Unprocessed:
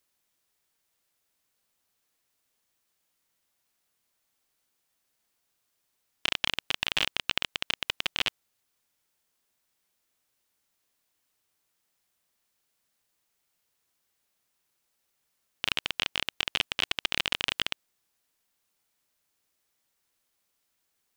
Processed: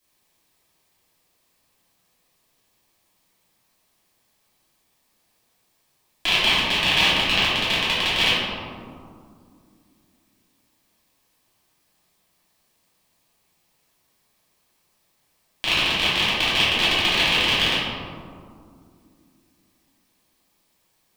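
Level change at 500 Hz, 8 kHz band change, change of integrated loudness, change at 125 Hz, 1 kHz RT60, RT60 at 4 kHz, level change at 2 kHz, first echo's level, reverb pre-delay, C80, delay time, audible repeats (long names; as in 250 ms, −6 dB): +14.0 dB, +8.5 dB, +10.5 dB, +16.0 dB, 2.1 s, 0.90 s, +11.0 dB, no echo audible, 3 ms, 0.0 dB, no echo audible, no echo audible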